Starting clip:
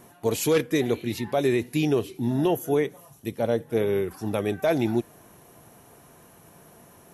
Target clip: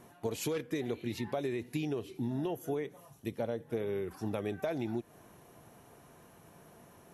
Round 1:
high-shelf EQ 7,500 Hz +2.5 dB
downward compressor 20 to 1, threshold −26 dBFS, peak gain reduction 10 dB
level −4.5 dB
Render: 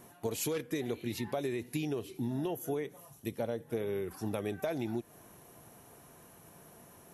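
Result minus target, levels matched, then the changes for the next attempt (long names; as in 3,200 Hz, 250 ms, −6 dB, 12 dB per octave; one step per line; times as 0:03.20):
8,000 Hz band +4.5 dB
change: high-shelf EQ 7,500 Hz −7.5 dB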